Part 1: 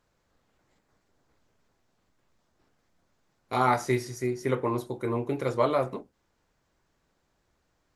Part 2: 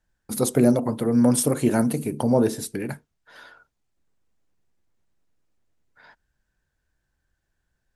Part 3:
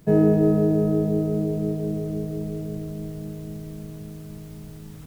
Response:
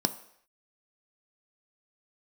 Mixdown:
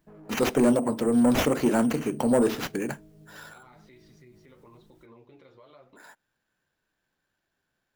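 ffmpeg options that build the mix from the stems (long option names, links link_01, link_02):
-filter_complex "[0:a]acompressor=threshold=-28dB:ratio=6,lowpass=frequency=3600:width_type=q:width=2.5,volume=-13dB[link_01];[1:a]highpass=190,bandreject=frequency=2100:width=12,acrusher=samples=5:mix=1:aa=0.000001,volume=1dB[link_02];[2:a]asoftclip=type=tanh:threshold=-19dB,volume=-15.5dB[link_03];[link_01][link_03]amix=inputs=2:normalize=0,flanger=delay=3:depth=8.3:regen=38:speed=1:shape=sinusoidal,alimiter=level_in=20dB:limit=-24dB:level=0:latency=1:release=83,volume=-20dB,volume=0dB[link_04];[link_02][link_04]amix=inputs=2:normalize=0,asoftclip=type=tanh:threshold=-13.5dB"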